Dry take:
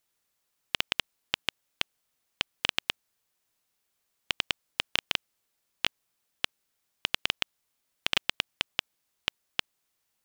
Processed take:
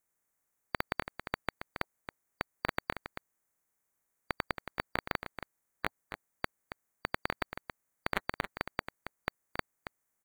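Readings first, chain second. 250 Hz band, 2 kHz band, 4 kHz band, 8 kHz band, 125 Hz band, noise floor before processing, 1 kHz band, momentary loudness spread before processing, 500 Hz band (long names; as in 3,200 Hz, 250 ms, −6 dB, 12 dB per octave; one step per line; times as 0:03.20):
+4.0 dB, −4.0 dB, −18.0 dB, −13.0 dB, +4.0 dB, −79 dBFS, +3.0 dB, 6 LU, +4.0 dB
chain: spectral magnitudes quantised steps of 30 dB
flat-topped bell 3,700 Hz −14 dB 1.2 octaves
single-tap delay 275 ms −9.5 dB
level −2.5 dB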